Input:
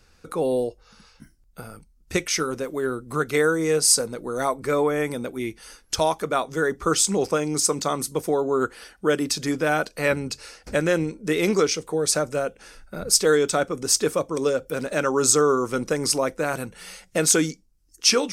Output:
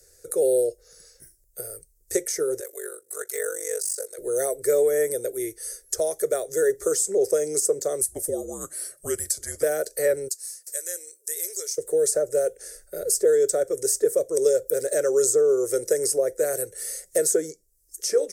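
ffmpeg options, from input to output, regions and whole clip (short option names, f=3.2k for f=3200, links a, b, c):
-filter_complex "[0:a]asettb=1/sr,asplit=3[a][b][c];[a]atrim=end=2.604[d];[b]atrim=start=2.6:end=4.18,asetpts=PTS-STARTPTS,afade=t=in:d=0.004:c=qsin,afade=t=out:st=1.576:d=0.004:c=qsin,deesser=0.6,highpass=860,aeval=exprs='val(0)*sin(2*PI*24*n/s)':c=same[e];[c]atrim=start=4.176[f];[d][e]acrossfade=d=0.004:c1=hsin:c2=qsin[g];[g][f]acrossfade=d=0.004:c1=qsin:c2=hsin,asettb=1/sr,asplit=3[h][i][j];[h]atrim=end=8.014[k];[i]atrim=start=8.01:end=9.63,asetpts=PTS-STARTPTS,afade=t=in:d=0.004:c=qsin,afade=t=out:st=1.616:d=0.004:c=qsin,highpass=56,equalizer=f=10k:w=2.4:g=6.5,afreqshift=-200[l];[j]atrim=start=9.626[m];[k][l]acrossfade=d=0.004:c1=hsin:c2=qsin[n];[n][m]acrossfade=d=0.004:c1=qsin:c2=hsin,asettb=1/sr,asplit=3[o][p][q];[o]atrim=end=10.284[r];[p]atrim=start=10.28:end=11.78,asetpts=PTS-STARTPTS,afade=t=in:d=0.004:c=qsin,afade=t=out:st=1.496:d=0.004:c=qsin,highpass=f=290:w=0.5412,highpass=f=290:w=1.3066,aderivative[s];[q]atrim=start=11.776[t];[r][s]acrossfade=d=0.004:c1=hsin:c2=qsin[u];[u][t]acrossfade=d=0.004:c1=qsin:c2=hsin,aemphasis=mode=production:type=cd,acrossover=split=150|1600[v][w][x];[v]acompressor=threshold=-47dB:ratio=4[y];[w]acompressor=threshold=-21dB:ratio=4[z];[x]acompressor=threshold=-32dB:ratio=4[aa];[y][z][aa]amix=inputs=3:normalize=0,firequalizer=gain_entry='entry(120,0);entry(230,-18);entry(390,12);entry(590,10);entry(920,-17);entry(1800,4);entry(2600,-12);entry(4300,0);entry(7400,13)':delay=0.05:min_phase=1,volume=-5.5dB"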